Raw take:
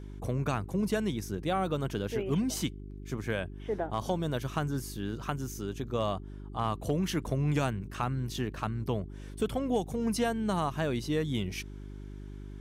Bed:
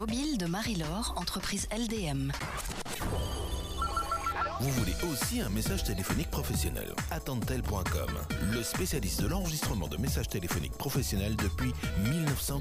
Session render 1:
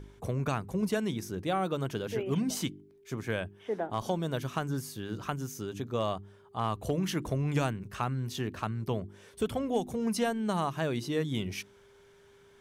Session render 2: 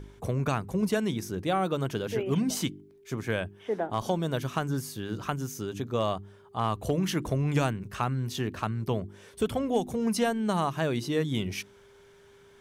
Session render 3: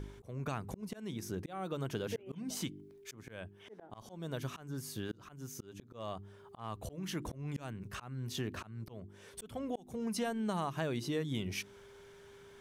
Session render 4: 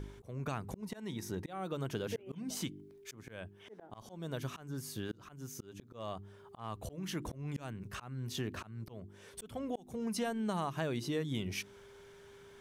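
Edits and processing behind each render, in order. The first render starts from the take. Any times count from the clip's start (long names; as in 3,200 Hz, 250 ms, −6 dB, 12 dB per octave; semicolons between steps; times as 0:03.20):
hum removal 50 Hz, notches 7
level +3 dB
volume swells 571 ms; downward compressor 2.5 to 1, threshold −36 dBFS, peak gain reduction 9.5 dB
0:00.82–0:01.50: hollow resonant body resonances 910/1,900/3,800 Hz, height 9 dB, ringing for 25 ms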